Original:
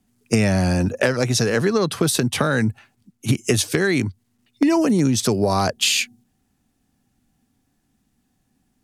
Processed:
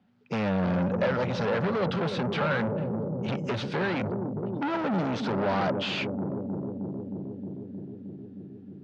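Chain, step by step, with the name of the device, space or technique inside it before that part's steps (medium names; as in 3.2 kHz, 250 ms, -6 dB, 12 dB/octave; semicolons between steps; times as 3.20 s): analogue delay pedal into a guitar amplifier (bucket-brigade echo 311 ms, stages 1024, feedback 80%, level -10 dB; valve stage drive 27 dB, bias 0.25; cabinet simulation 110–3800 Hz, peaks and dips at 180 Hz +6 dB, 320 Hz -4 dB, 560 Hz +8 dB, 860 Hz +5 dB, 1.4 kHz +6 dB)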